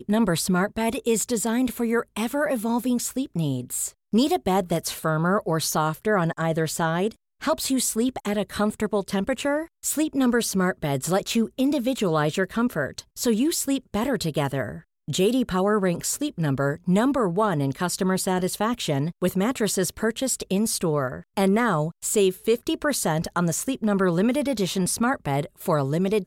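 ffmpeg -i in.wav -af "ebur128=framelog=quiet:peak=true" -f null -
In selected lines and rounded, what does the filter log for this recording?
Integrated loudness:
  I:         -24.2 LUFS
  Threshold: -34.2 LUFS
Loudness range:
  LRA:         1.6 LU
  Threshold: -44.3 LUFS
  LRA low:   -25.1 LUFS
  LRA high:  -23.5 LUFS
True peak:
  Peak:      -10.1 dBFS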